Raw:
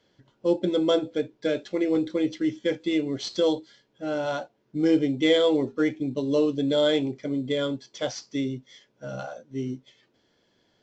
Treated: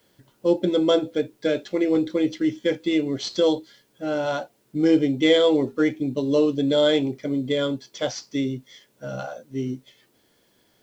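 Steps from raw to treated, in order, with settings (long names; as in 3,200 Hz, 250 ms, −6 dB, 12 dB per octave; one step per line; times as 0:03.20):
bit-depth reduction 12 bits, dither triangular
level +3 dB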